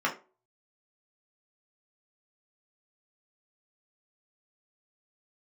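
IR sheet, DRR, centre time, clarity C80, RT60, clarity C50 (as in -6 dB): -3.5 dB, 16 ms, 19.0 dB, 0.35 s, 12.5 dB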